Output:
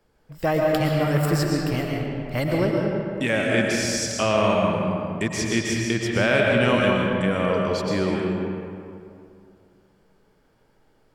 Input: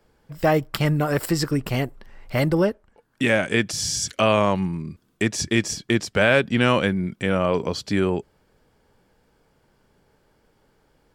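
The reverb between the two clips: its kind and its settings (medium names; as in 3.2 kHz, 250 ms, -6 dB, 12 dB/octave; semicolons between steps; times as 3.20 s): algorithmic reverb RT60 2.5 s, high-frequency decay 0.55×, pre-delay 80 ms, DRR -1.5 dB; trim -4 dB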